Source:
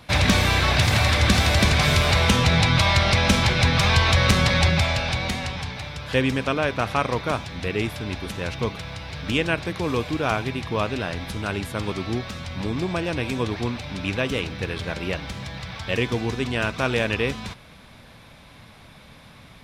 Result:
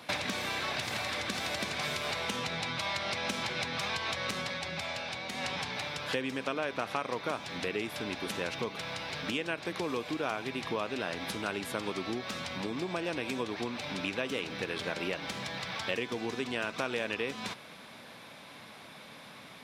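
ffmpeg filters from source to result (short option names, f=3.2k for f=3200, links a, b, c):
-filter_complex "[0:a]asplit=3[a][b][c];[a]atrim=end=4.61,asetpts=PTS-STARTPTS,afade=t=out:st=4.4:d=0.21:silence=0.281838[d];[b]atrim=start=4.61:end=5.32,asetpts=PTS-STARTPTS,volume=-11dB[e];[c]atrim=start=5.32,asetpts=PTS-STARTPTS,afade=t=in:d=0.21:silence=0.281838[f];[d][e][f]concat=n=3:v=0:a=1,acompressor=threshold=-28dB:ratio=16,highpass=240"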